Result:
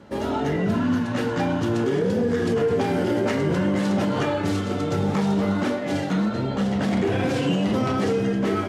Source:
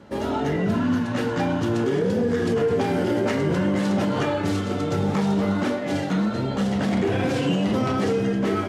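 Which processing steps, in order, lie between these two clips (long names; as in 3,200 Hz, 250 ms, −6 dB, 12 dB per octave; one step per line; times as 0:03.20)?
0:06.28–0:06.80: high-shelf EQ 7,600 Hz → 4,900 Hz −5.5 dB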